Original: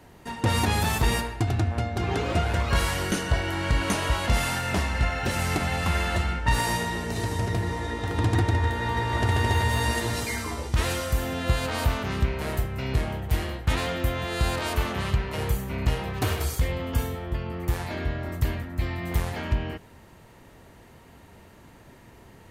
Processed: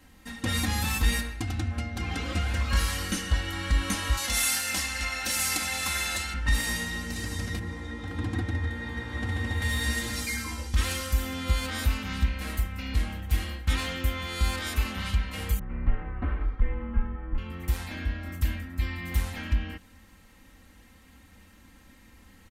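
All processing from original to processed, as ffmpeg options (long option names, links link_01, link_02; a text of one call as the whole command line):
ffmpeg -i in.wav -filter_complex "[0:a]asettb=1/sr,asplit=3[link_01][link_02][link_03];[link_01]atrim=end=4.174[link_04];[link_02]atrim=start=4.17:end=6.34,asetpts=PTS-STARTPTS,afade=type=in:duration=0.004:curve=qsin,afade=type=out:start_time=2.166:duration=0.004:curve=qsin,bass=frequency=250:gain=-12,treble=frequency=4000:gain=10,bandreject=frequency=1200:width=11[link_05];[link_03]atrim=start=6.336[link_06];[link_04][link_05]acrossfade=duration=0.004:curve1=hsin:curve2=qsin[link_07];[link_07][link_06]acrossfade=duration=0.004:curve1=qsin:curve2=hsin,asettb=1/sr,asplit=3[link_08][link_09][link_10];[link_08]atrim=end=7.594[link_11];[link_09]atrim=start=7.59:end=9.62,asetpts=PTS-STARTPTS,afade=type=in:duration=0.004:curve=qsin,afade=type=out:start_time=2.026:duration=0.004:curve=qsin,highpass=72,highshelf=frequency=2500:gain=-11.5[link_12];[link_10]atrim=start=9.616[link_13];[link_11][link_12]acrossfade=duration=0.004:curve1=hsin:curve2=qsin[link_14];[link_14][link_13]acrossfade=duration=0.004:curve1=qsin:curve2=hsin,asettb=1/sr,asplit=3[link_15][link_16][link_17];[link_15]atrim=end=15.594[link_18];[link_16]atrim=start=15.59:end=17.38,asetpts=PTS-STARTPTS,afade=type=in:duration=0.004:curve=qsin,afade=type=out:start_time=1.786:duration=0.004:curve=qsin,lowpass=frequency=2000:width=0.5412,lowpass=frequency=2000:width=1.3066,afreqshift=-29,adynamicequalizer=threshold=0.00447:dfrequency=1500:dqfactor=0.7:tfrequency=1500:tqfactor=0.7:attack=5:release=100:ratio=0.375:range=3:mode=cutabove:tftype=highshelf[link_19];[link_17]atrim=start=17.376[link_20];[link_18][link_19]acrossfade=duration=0.004:curve1=hsin:curve2=qsin[link_21];[link_21][link_20]acrossfade=duration=0.004:curve1=qsin:curve2=hsin,equalizer=frequency=560:width=0.63:gain=-11,aecho=1:1:3.8:0.9,volume=-2.5dB" out.wav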